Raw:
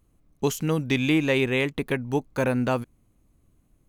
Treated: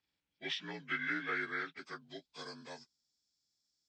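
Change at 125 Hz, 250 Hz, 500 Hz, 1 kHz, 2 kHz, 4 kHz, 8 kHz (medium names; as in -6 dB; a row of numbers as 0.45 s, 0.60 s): -28.0 dB, -23.0 dB, -23.5 dB, -12.0 dB, -8.0 dB, -10.0 dB, -21.5 dB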